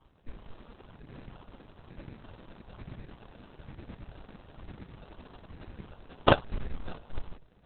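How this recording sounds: phasing stages 12, 1.1 Hz, lowest notch 110–1400 Hz; aliases and images of a low sample rate 2.1 kHz, jitter 0%; Opus

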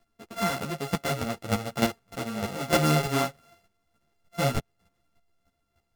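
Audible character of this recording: a buzz of ramps at a fixed pitch in blocks of 64 samples; chopped level 3.3 Hz, depth 65%, duty 10%; a shimmering, thickened sound

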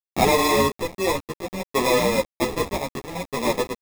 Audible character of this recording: a quantiser's noise floor 6-bit, dither none; tremolo triangle 0.82 Hz, depth 30%; aliases and images of a low sample rate 1.5 kHz, jitter 0%; a shimmering, thickened sound

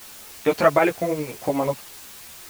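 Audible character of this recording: tremolo triangle 11 Hz, depth 55%; a quantiser's noise floor 8-bit, dither triangular; a shimmering, thickened sound

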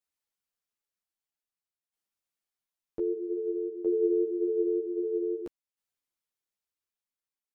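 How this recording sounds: tremolo saw down 0.52 Hz, depth 65%; a shimmering, thickened sound

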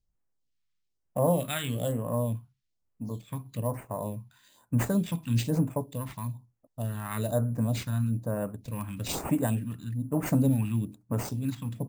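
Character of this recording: aliases and images of a low sample rate 11 kHz, jitter 0%; phasing stages 2, 1.1 Hz, lowest notch 500–3800 Hz

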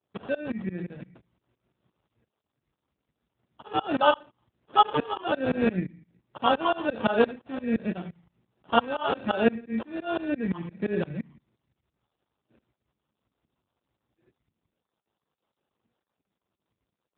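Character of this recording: phasing stages 4, 1.3 Hz, lowest notch 550–2100 Hz; aliases and images of a low sample rate 2.1 kHz, jitter 0%; tremolo saw up 5.8 Hz, depth 100%; AMR-NB

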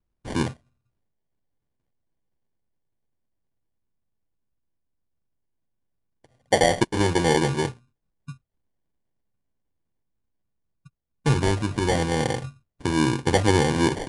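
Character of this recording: phasing stages 8, 0.16 Hz, lowest notch 590–3400 Hz; aliases and images of a low sample rate 1.3 kHz, jitter 0%; MP3

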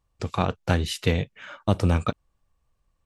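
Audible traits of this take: noise floor -73 dBFS; spectral tilt -5.5 dB/octave

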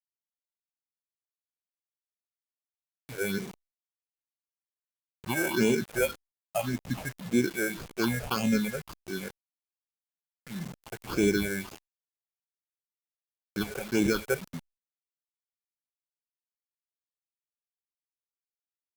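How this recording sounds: aliases and images of a low sample rate 1.9 kHz, jitter 0%; phasing stages 6, 1.8 Hz, lowest notch 260–1300 Hz; a quantiser's noise floor 8-bit, dither none; Opus

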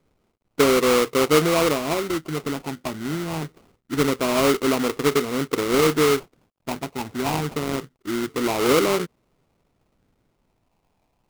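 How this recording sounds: a quantiser's noise floor 12-bit, dither none; phasing stages 8, 0.25 Hz, lowest notch 500–1700 Hz; aliases and images of a low sample rate 1.7 kHz, jitter 20%

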